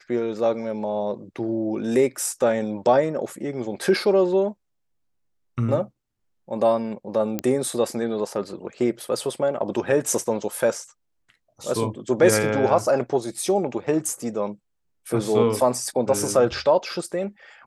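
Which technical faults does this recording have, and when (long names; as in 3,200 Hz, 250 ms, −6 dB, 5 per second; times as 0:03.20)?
0:07.39: click −10 dBFS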